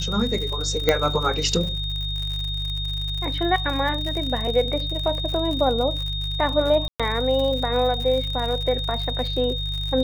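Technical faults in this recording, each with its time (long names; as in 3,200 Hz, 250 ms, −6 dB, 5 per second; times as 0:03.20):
surface crackle 81 per second −28 dBFS
mains hum 50 Hz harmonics 3 −29 dBFS
whistle 3,700 Hz −28 dBFS
0:00.89: click −4 dBFS
0:06.88–0:07.00: drop-out 116 ms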